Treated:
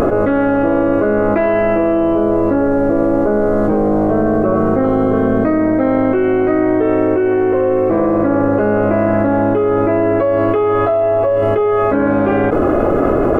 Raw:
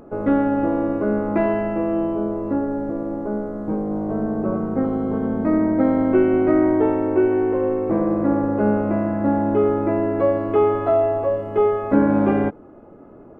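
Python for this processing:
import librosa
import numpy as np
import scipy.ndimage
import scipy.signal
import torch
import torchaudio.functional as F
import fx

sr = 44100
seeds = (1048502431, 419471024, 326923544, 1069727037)

y = fx.peak_eq(x, sr, hz=190.0, db=-9.5, octaves=1.6)
y = fx.notch(y, sr, hz=890.0, q=5.2)
y = fx.env_flatten(y, sr, amount_pct=100)
y = F.gain(torch.from_numpy(y), 3.5).numpy()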